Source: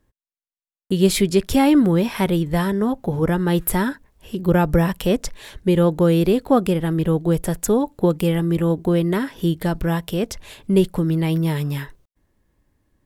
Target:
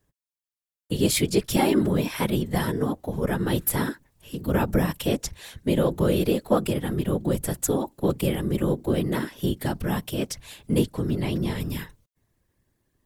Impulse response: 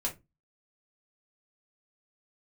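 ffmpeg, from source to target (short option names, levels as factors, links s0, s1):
-filter_complex "[0:a]asettb=1/sr,asplit=3[s0][s1][s2];[s0]atrim=end=10.844[s3];[s1]atrim=start=10.84:end=11.6,asetpts=PTS-STARTPTS,afade=t=in:d=0.004:c=qsin,afade=t=out:st=0.756:d=0.004:c=qsin,acrossover=split=8500[s4][s5];[s5]acompressor=threshold=0.00158:ratio=4:attack=1:release=60[s6];[s4][s6]amix=inputs=2:normalize=0[s7];[s2]atrim=start=11.596[s8];[s3][s7]acrossfade=d=0.004:c1=hsin:c2=qsin[s9];[s9][s8]acrossfade=d=0.004:c1=qsin:c2=hsin,highshelf=f=3200:g=7.5,acrossover=split=330|3500[s10][s11][s12];[s12]asoftclip=type=tanh:threshold=0.355[s13];[s10][s11][s13]amix=inputs=3:normalize=0,afftfilt=real='hypot(re,im)*cos(2*PI*random(0))':imag='hypot(re,im)*sin(2*PI*random(1))':win_size=512:overlap=0.75"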